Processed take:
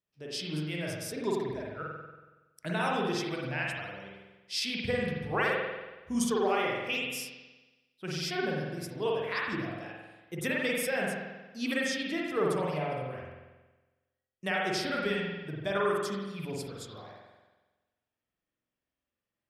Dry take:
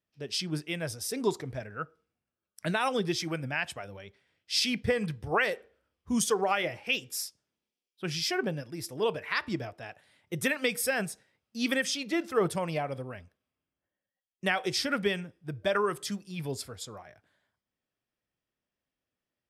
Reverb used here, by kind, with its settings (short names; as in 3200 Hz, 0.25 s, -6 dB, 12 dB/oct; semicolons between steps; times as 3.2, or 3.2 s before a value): spring tank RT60 1.2 s, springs 46 ms, chirp 45 ms, DRR -3 dB; gain -5.5 dB